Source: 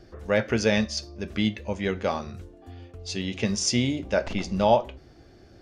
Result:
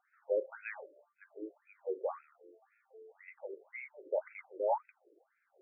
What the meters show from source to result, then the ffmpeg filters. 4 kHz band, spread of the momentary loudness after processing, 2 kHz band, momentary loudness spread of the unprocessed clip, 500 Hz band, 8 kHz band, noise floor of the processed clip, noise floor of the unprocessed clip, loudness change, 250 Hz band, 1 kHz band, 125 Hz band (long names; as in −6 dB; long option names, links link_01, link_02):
below −40 dB, 20 LU, −16.5 dB, 18 LU, −11.0 dB, below −40 dB, −79 dBFS, −52 dBFS, −13.5 dB, −26.5 dB, −12.0 dB, below −40 dB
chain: -af "highpass=280,equalizer=frequency=440:width_type=q:width=4:gain=4,equalizer=frequency=690:width_type=q:width=4:gain=-7,equalizer=frequency=1100:width_type=q:width=4:gain=-6,equalizer=frequency=1700:width_type=q:width=4:gain=-6,lowpass=frequency=2500:width=0.5412,lowpass=frequency=2500:width=1.3066,afftfilt=real='re*between(b*sr/1024,420*pow(1900/420,0.5+0.5*sin(2*PI*1.9*pts/sr))/1.41,420*pow(1900/420,0.5+0.5*sin(2*PI*1.9*pts/sr))*1.41)':imag='im*between(b*sr/1024,420*pow(1900/420,0.5+0.5*sin(2*PI*1.9*pts/sr))/1.41,420*pow(1900/420,0.5+0.5*sin(2*PI*1.9*pts/sr))*1.41)':win_size=1024:overlap=0.75,volume=-6dB"